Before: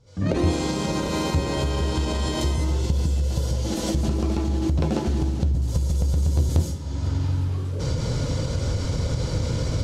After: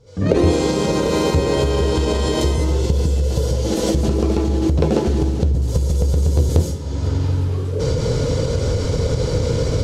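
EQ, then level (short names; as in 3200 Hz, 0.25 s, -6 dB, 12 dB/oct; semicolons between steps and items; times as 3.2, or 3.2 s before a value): bell 450 Hz +11 dB 0.41 oct; +4.5 dB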